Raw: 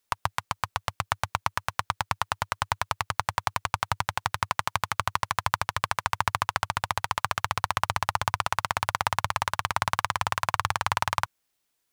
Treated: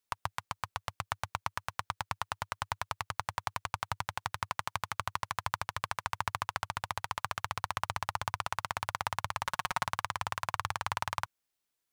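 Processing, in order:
0:09.45–0:09.87: comb filter 5.5 ms, depth 86%
level −8 dB

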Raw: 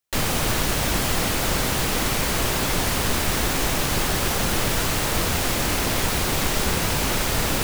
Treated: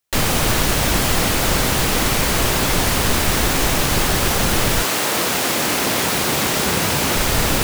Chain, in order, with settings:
0:04.82–0:07.15: high-pass filter 280 Hz → 93 Hz 12 dB per octave
level +5 dB

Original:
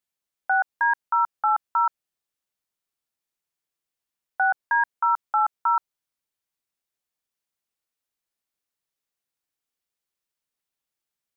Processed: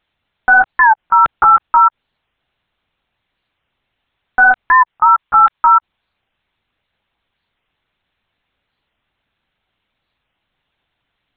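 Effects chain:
0:04.88–0:05.76: high-pass filter 770 Hz 6 dB per octave
linear-prediction vocoder at 8 kHz pitch kept
boost into a limiter +22.5 dB
wow of a warped record 45 rpm, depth 160 cents
level −1 dB

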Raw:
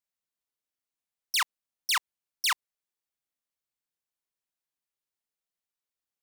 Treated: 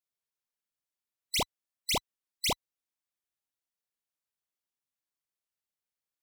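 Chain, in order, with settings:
frequency inversion band by band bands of 2,000 Hz
level −3 dB

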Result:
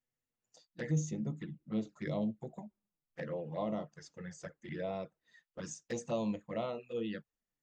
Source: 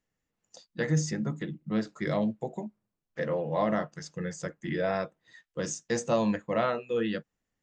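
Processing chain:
0:00.90–0:03.26: low-shelf EQ 380 Hz +2.5 dB
flanger swept by the level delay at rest 8.1 ms, full sweep at −25 dBFS
level −7.5 dB

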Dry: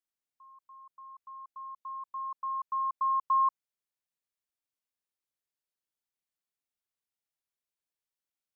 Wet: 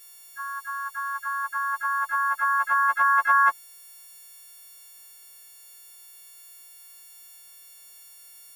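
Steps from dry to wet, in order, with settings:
every partial snapped to a pitch grid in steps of 4 semitones
pitch-shifted copies added +4 semitones −16 dB, +7 semitones −7 dB
every bin compressed towards the loudest bin 2 to 1
level +8.5 dB

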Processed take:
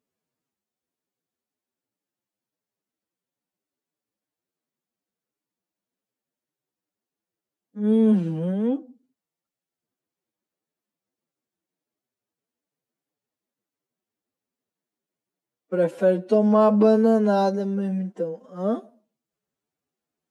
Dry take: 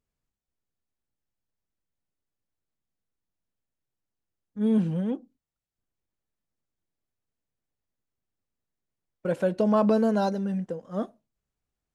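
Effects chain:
high-pass filter 290 Hz 12 dB per octave
low-shelf EQ 460 Hz +10.5 dB
phase-vocoder stretch with locked phases 1.7×
level +1.5 dB

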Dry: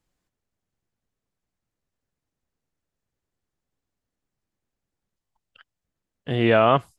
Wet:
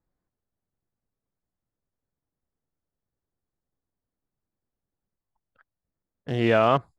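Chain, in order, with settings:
adaptive Wiener filter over 15 samples
level −2.5 dB

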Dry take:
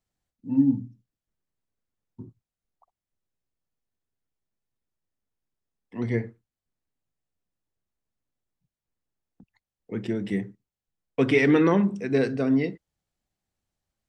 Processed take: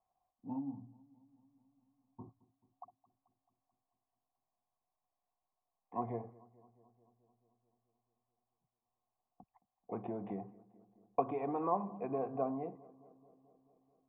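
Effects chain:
dynamic equaliser 1,900 Hz, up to −6 dB, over −43 dBFS, Q 1.2
downward compressor, threshold −29 dBFS, peak gain reduction 13.5 dB
formant resonators in series a
feedback echo with a low-pass in the loop 218 ms, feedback 70%, low-pass 1,900 Hz, level −22 dB
level +17 dB

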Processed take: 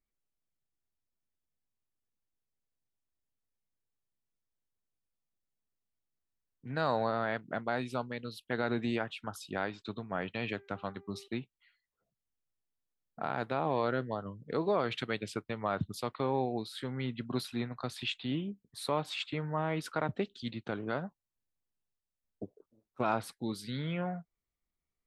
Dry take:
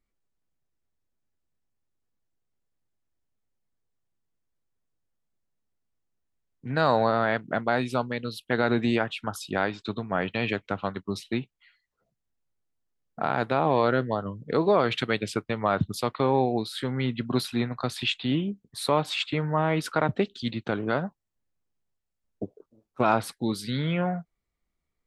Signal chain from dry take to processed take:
0:10.55–0:11.28: hum removal 397.4 Hz, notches 6
level −8.5 dB

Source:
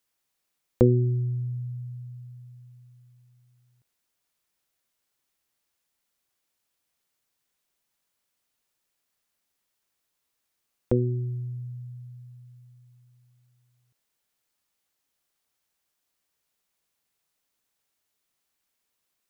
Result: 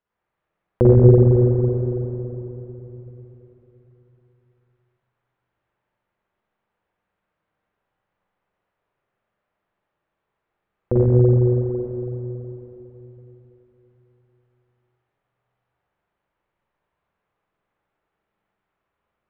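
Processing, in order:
0:00.99–0:02.82: three sine waves on the formant tracks
low-pass filter 1,400 Hz 12 dB per octave
parametric band 260 Hz −7.5 dB 0.32 octaves
spring reverb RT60 3.7 s, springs 41/46/55 ms, chirp 40 ms, DRR −8.5 dB
level +2.5 dB

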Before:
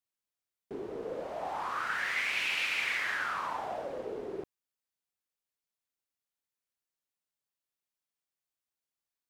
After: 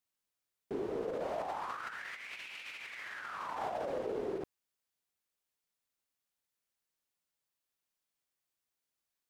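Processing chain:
compressor whose output falls as the input rises −38 dBFS, ratio −0.5
level −1 dB

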